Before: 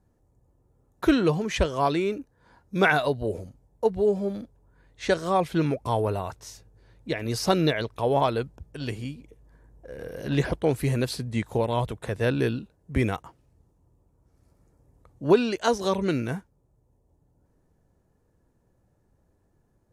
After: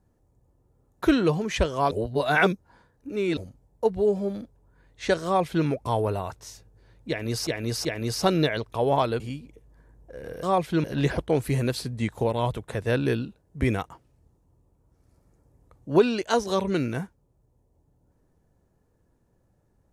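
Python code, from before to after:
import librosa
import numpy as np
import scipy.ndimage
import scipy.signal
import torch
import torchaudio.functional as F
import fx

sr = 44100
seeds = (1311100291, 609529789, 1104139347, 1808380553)

y = fx.edit(x, sr, fx.reverse_span(start_s=1.91, length_s=1.46),
    fx.duplicate(start_s=5.25, length_s=0.41, to_s=10.18),
    fx.repeat(start_s=7.09, length_s=0.38, count=3),
    fx.cut(start_s=8.44, length_s=0.51), tone=tone)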